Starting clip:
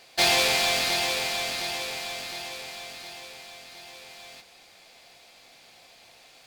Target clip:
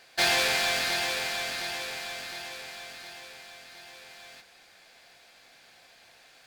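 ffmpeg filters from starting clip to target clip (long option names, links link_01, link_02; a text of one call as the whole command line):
ffmpeg -i in.wav -af "equalizer=frequency=1600:width_type=o:width=0.43:gain=9.5,volume=-4dB" out.wav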